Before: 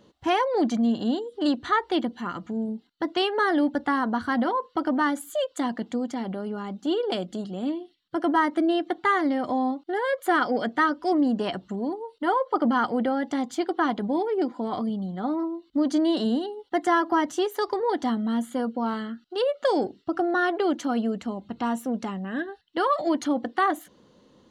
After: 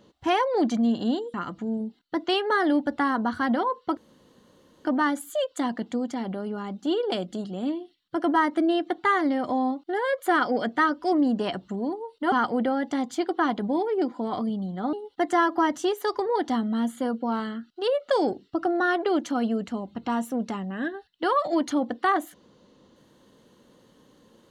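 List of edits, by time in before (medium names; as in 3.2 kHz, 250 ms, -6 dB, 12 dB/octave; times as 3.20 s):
1.34–2.22 s: delete
4.85 s: insert room tone 0.88 s
12.32–12.72 s: delete
15.33–16.47 s: delete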